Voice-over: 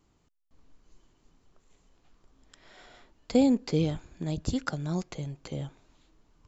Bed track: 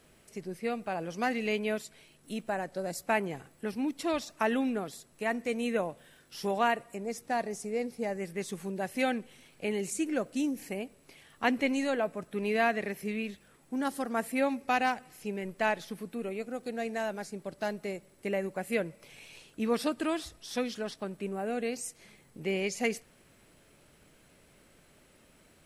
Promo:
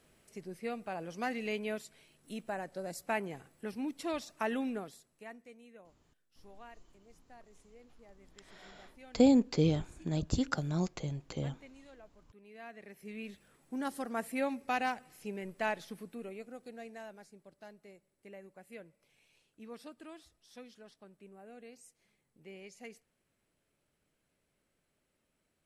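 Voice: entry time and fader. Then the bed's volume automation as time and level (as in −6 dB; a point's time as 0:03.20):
5.85 s, −1.5 dB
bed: 0:04.77 −5.5 dB
0:05.67 −26 dB
0:12.48 −26 dB
0:13.37 −5 dB
0:15.87 −5 dB
0:17.65 −19 dB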